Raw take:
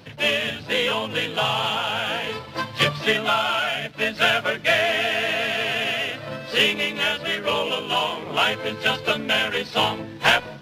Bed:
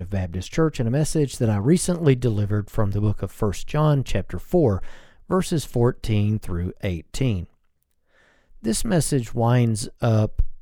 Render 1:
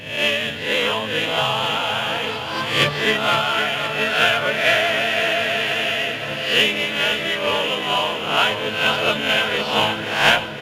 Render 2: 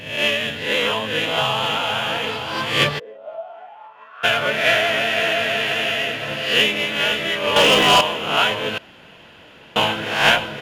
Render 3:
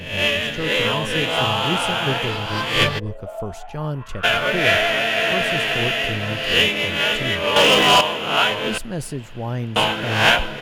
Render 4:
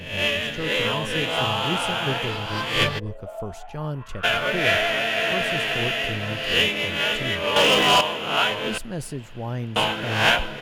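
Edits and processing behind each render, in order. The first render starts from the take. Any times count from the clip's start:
peak hold with a rise ahead of every peak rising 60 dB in 0.64 s; repeating echo 518 ms, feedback 57%, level −8.5 dB
0:02.98–0:04.23: resonant band-pass 480 Hz → 1,200 Hz, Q 18; 0:07.56–0:08.01: leveller curve on the samples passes 3; 0:08.78–0:09.76: fill with room tone
mix in bed −7.5 dB
level −3.5 dB

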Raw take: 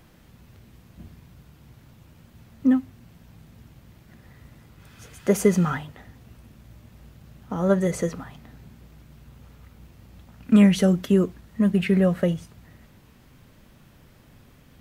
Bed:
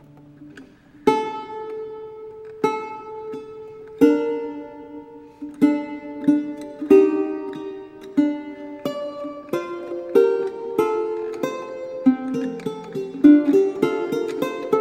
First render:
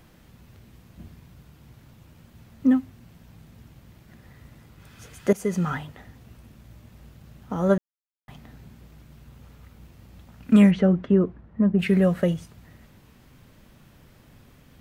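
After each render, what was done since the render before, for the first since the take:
0:05.33–0:05.82: fade in, from −15.5 dB
0:07.78–0:08.28: silence
0:10.70–0:11.78: low-pass filter 2,100 Hz → 1,100 Hz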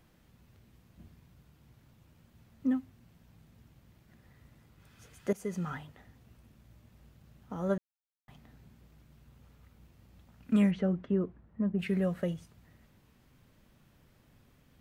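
level −10.5 dB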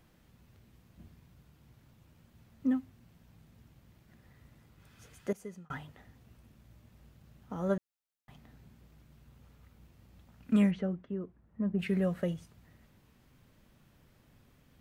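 0:05.14–0:05.70: fade out linear
0:10.61–0:11.76: duck −8 dB, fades 0.42 s linear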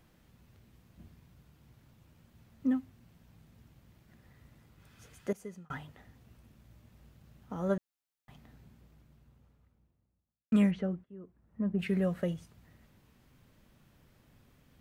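0:08.41–0:10.52: fade out and dull
0:11.04–0:11.60: fade in, from −22.5 dB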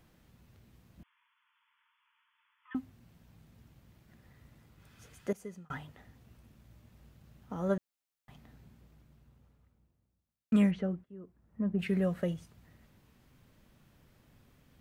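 0:01.03–0:02.75: linear-phase brick-wall band-pass 870–3,500 Hz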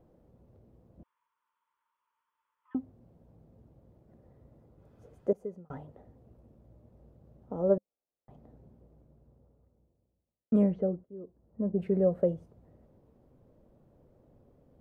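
drawn EQ curve 200 Hz 0 dB, 530 Hz +10 dB, 1,700 Hz −15 dB, 2,600 Hz −19 dB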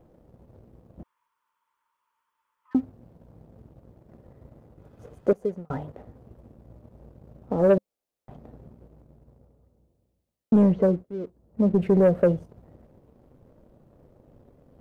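in parallel at +2.5 dB: brickwall limiter −21.5 dBFS, peak gain reduction 7 dB
on the sum: leveller curve on the samples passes 1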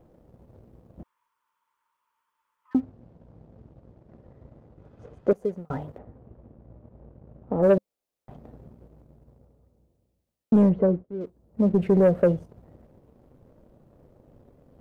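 0:02.80–0:05.31: high-frequency loss of the air 93 metres
0:05.98–0:07.63: Bessel low-pass filter 1,700 Hz
0:10.69–0:11.21: low-pass filter 1,400 Hz 6 dB per octave

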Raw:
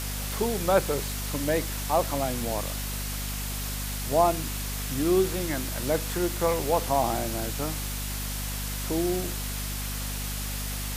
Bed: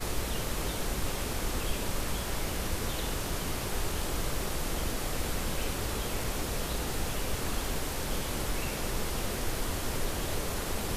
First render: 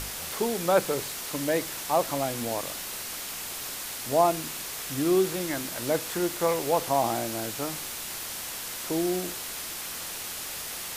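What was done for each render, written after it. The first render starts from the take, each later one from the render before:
mains-hum notches 50/100/150/200/250 Hz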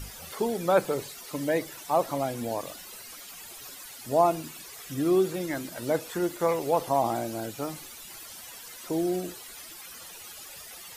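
broadband denoise 14 dB, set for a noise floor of −37 dBFS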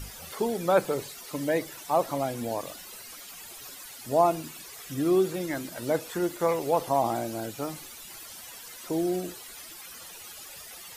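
no processing that can be heard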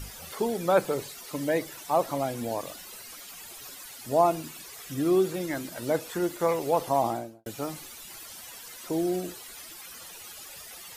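0:07.03–0:07.46: fade out and dull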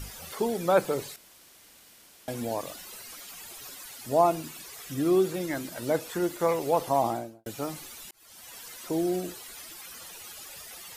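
0:01.16–0:02.28: fill with room tone
0:08.11–0:08.60: fade in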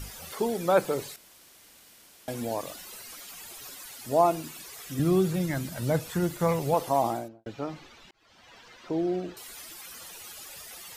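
0:04.99–0:06.74: low shelf with overshoot 220 Hz +9.5 dB, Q 1.5
0:07.28–0:09.37: high-frequency loss of the air 200 metres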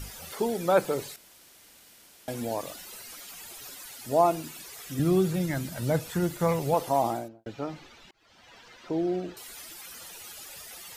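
notch filter 1,100 Hz, Q 25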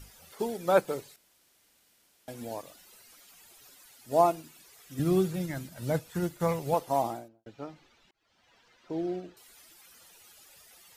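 expander for the loud parts 1.5 to 1, over −41 dBFS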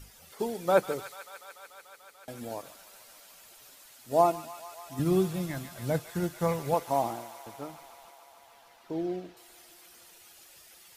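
delay with a high-pass on its return 146 ms, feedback 85%, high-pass 1,500 Hz, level −9 dB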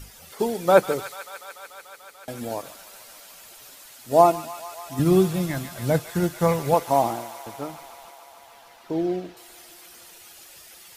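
level +7.5 dB

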